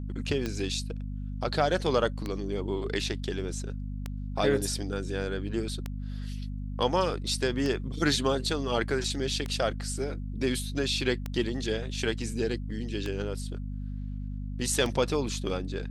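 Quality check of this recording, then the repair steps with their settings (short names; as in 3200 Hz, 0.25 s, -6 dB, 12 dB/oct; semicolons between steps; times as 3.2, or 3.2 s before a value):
hum 50 Hz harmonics 5 -35 dBFS
tick 33 1/3 rpm -18 dBFS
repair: de-click; de-hum 50 Hz, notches 5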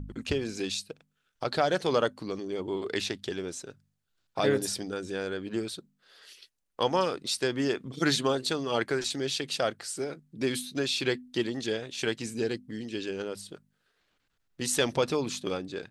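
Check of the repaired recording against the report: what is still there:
none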